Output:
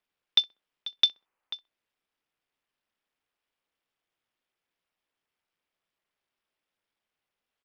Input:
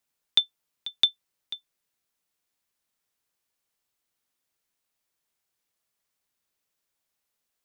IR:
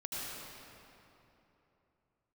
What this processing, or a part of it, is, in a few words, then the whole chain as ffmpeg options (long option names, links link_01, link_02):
Bluetooth headset: -filter_complex "[0:a]asettb=1/sr,asplit=3[link_01][link_02][link_03];[link_01]atrim=end=1.084[link_04];[link_02]atrim=start=1.08:end=1.53,asetpts=PTS-STARTPTS,afade=type=in:duration=0.004:curve=qsin,afade=type=out:start_time=0.446:duration=0.004:curve=qsin,equalizer=frequency=1000:width_type=o:width=1.2:gain=8[link_05];[link_03]atrim=start=1.526[link_06];[link_04][link_05]acrossfade=duration=0.004:curve1=hsin:curve2=qsin[link_07];[link_07][link_06]acrossfade=duration=0.004:curve1=qsin:curve2=hsin,highpass=240,asplit=2[link_08][link_09];[link_09]adelay=64,lowpass=frequency=1300:poles=1,volume=-20.5dB,asplit=2[link_10][link_11];[link_11]adelay=64,lowpass=frequency=1300:poles=1,volume=0.39,asplit=2[link_12][link_13];[link_13]adelay=64,lowpass=frequency=1300:poles=1,volume=0.39[link_14];[link_08][link_10][link_12][link_14]amix=inputs=4:normalize=0,aresample=8000,aresample=44100" -ar 44100 -c:a sbc -b:a 64k